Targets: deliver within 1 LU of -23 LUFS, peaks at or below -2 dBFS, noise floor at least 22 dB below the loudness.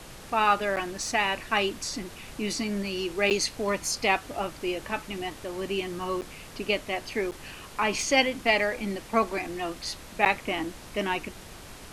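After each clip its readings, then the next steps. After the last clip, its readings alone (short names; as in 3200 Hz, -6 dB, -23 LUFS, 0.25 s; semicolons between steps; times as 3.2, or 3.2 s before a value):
dropouts 5; longest dropout 8.7 ms; noise floor -45 dBFS; noise floor target -50 dBFS; loudness -28.0 LUFS; peak -6.0 dBFS; loudness target -23.0 LUFS
-> interpolate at 0.76/3.3/6.21/7.31/10.25, 8.7 ms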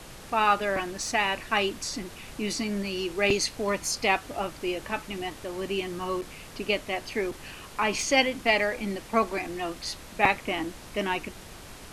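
dropouts 0; noise floor -45 dBFS; noise floor target -50 dBFS
-> noise print and reduce 6 dB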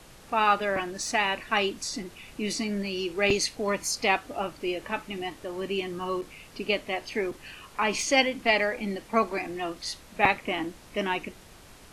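noise floor -51 dBFS; loudness -28.0 LUFS; peak -6.0 dBFS; loudness target -23.0 LUFS
-> gain +5 dB; limiter -2 dBFS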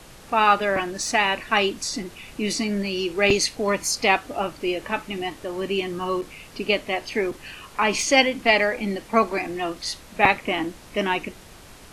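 loudness -23.0 LUFS; peak -2.0 dBFS; noise floor -46 dBFS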